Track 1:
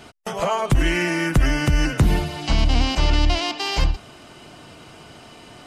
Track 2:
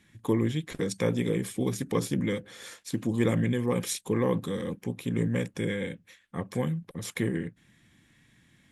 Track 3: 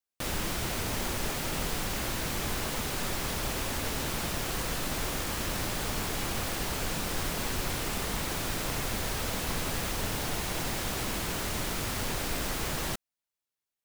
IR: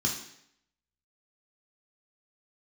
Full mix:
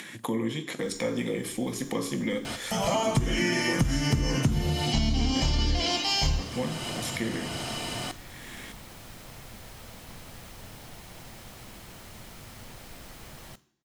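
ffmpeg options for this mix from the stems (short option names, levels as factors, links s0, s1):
-filter_complex "[0:a]highshelf=f=4300:g=9.5,adelay=2450,volume=0.668,asplit=2[s0][s1];[s1]volume=0.355[s2];[1:a]highpass=330,volume=0.562,asplit=3[s3][s4][s5];[s4]volume=0.562[s6];[2:a]adelay=600,volume=0.211,asplit=2[s7][s8];[s8]volume=0.0944[s9];[s5]apad=whole_len=636846[s10];[s7][s10]sidechaincompress=threshold=0.00562:ratio=8:attack=47:release=1230[s11];[s0][s3]amix=inputs=2:normalize=0,acompressor=mode=upward:threshold=0.0794:ratio=2.5,alimiter=limit=0.126:level=0:latency=1:release=68,volume=1[s12];[3:a]atrim=start_sample=2205[s13];[s2][s6][s9]amix=inputs=3:normalize=0[s14];[s14][s13]afir=irnorm=-1:irlink=0[s15];[s11][s12][s15]amix=inputs=3:normalize=0,acompressor=threshold=0.0891:ratio=8"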